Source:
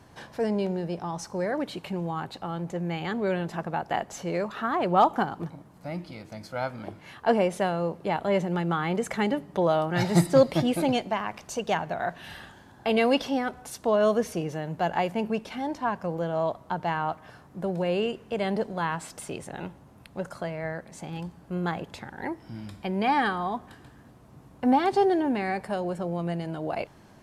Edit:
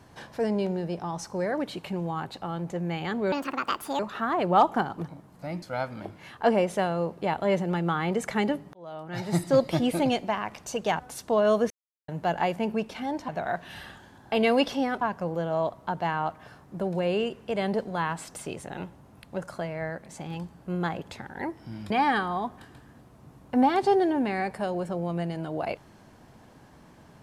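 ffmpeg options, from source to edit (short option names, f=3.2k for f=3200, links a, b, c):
-filter_complex "[0:a]asplit=11[a][b][c][d][e][f][g][h][i][j][k];[a]atrim=end=3.324[l];[b]atrim=start=3.32:end=4.41,asetpts=PTS-STARTPTS,asetrate=71442,aresample=44100,atrim=end_sample=29672,asetpts=PTS-STARTPTS[m];[c]atrim=start=4.406:end=6.042[n];[d]atrim=start=6.448:end=9.56,asetpts=PTS-STARTPTS,afade=t=out:st=3.108:d=0.004:c=hsin[o];[e]atrim=start=9.56:end=11.822,asetpts=PTS-STARTPTS,afade=t=in:d=1.15[p];[f]atrim=start=13.548:end=14.26,asetpts=PTS-STARTPTS,afade=t=out:st=0.708:d=0.004:c=hsin[q];[g]atrim=start=14.26:end=14.64,asetpts=PTS-STARTPTS,volume=0[r];[h]atrim=start=14.64:end=15.842,asetpts=PTS-STARTPTS,afade=t=in:d=0.004:c=hsin[s];[i]atrim=start=11.818:end=13.552[t];[j]atrim=start=15.838:end=22.732[u];[k]atrim=start=22.998[v];[l][m]acrossfade=d=0.004:c1=hsin:c2=hsin[w];[w][n]acrossfade=d=0.004:c1=hsin:c2=hsin[x];[o][p]concat=n=2:v=0:a=1[y];[x][y]acrossfade=d=0.004:c1=hsin:c2=hsin[z];[q][r][s]concat=n=3:v=0:a=1[aa];[z][aa]acrossfade=d=0.004:c1=hsin:c2=hsin[ab];[ab][t]acrossfade=d=0.004:c1=hsin:c2=hsin[ac];[ac][u]acrossfade=d=0.004:c1=hsin:c2=hsin[ad];[ad][v]acrossfade=d=0.004:c1=hsin:c2=hsin"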